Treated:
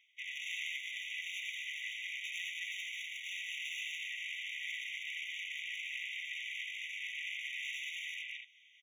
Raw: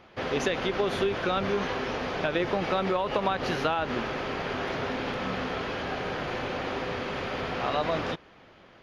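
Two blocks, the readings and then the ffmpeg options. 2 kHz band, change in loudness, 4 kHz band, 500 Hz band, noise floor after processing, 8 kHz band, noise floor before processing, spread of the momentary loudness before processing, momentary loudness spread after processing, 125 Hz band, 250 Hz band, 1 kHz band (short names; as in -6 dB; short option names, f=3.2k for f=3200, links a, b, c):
-4.5 dB, -10.0 dB, -4.0 dB, under -40 dB, -64 dBFS, -1.5 dB, -54 dBFS, 5 LU, 2 LU, under -40 dB, under -40 dB, under -40 dB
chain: -filter_complex "[0:a]afwtdn=0.0178,asplit=2[a][b];[b]aecho=0:1:81|95|201|219|230|298:0.631|0.562|0.531|0.473|0.106|0.133[c];[a][c]amix=inputs=2:normalize=0,aeval=exprs='0.299*(cos(1*acos(clip(val(0)/0.299,-1,1)))-cos(1*PI/2))+0.0422*(cos(6*acos(clip(val(0)/0.299,-1,1)))-cos(6*PI/2))':c=same,volume=24dB,asoftclip=hard,volume=-24dB,areverse,acompressor=threshold=-40dB:ratio=8,areverse,afftfilt=real='re*eq(mod(floor(b*sr/1024/1900),2),1)':imag='im*eq(mod(floor(b*sr/1024/1900),2),1)':win_size=1024:overlap=0.75,volume=12.5dB"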